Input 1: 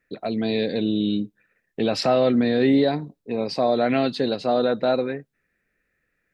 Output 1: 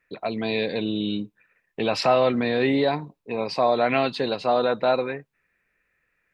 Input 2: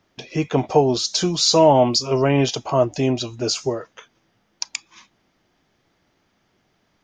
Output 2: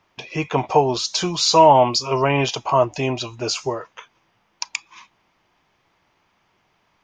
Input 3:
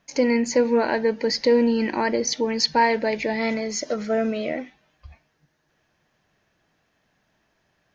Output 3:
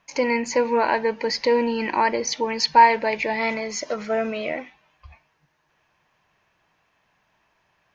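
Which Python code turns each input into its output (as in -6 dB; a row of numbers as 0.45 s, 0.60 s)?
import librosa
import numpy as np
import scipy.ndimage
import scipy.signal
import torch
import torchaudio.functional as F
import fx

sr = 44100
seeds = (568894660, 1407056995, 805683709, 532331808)

y = fx.graphic_eq_15(x, sr, hz=(250, 1000, 2500), db=(-4, 10, 7))
y = F.gain(torch.from_numpy(y), -2.0).numpy()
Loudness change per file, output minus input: -1.5 LU, +0.5 LU, +0.5 LU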